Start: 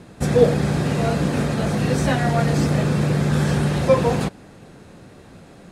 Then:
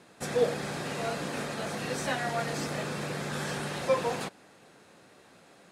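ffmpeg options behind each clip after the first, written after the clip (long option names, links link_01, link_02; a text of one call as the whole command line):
ffmpeg -i in.wav -af "highpass=frequency=730:poles=1,volume=-5.5dB" out.wav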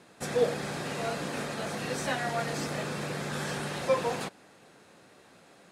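ffmpeg -i in.wav -af anull out.wav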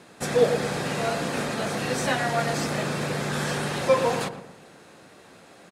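ffmpeg -i in.wav -filter_complex "[0:a]asplit=2[link_01][link_02];[link_02]adelay=116,lowpass=frequency=990:poles=1,volume=-8.5dB,asplit=2[link_03][link_04];[link_04]adelay=116,lowpass=frequency=990:poles=1,volume=0.47,asplit=2[link_05][link_06];[link_06]adelay=116,lowpass=frequency=990:poles=1,volume=0.47,asplit=2[link_07][link_08];[link_08]adelay=116,lowpass=frequency=990:poles=1,volume=0.47,asplit=2[link_09][link_10];[link_10]adelay=116,lowpass=frequency=990:poles=1,volume=0.47[link_11];[link_01][link_03][link_05][link_07][link_09][link_11]amix=inputs=6:normalize=0,volume=6dB" out.wav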